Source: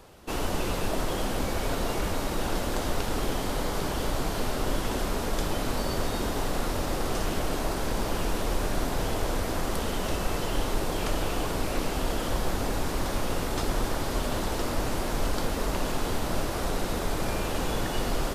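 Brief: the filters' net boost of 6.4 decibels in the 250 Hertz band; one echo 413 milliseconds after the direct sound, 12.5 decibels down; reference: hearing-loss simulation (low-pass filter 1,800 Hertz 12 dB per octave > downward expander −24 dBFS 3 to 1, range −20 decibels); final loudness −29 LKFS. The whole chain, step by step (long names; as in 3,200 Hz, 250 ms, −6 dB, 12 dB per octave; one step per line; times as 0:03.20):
low-pass filter 1,800 Hz 12 dB per octave
parametric band 250 Hz +8 dB
single-tap delay 413 ms −12.5 dB
downward expander −24 dBFS 3 to 1, range −20 dB
level −0.5 dB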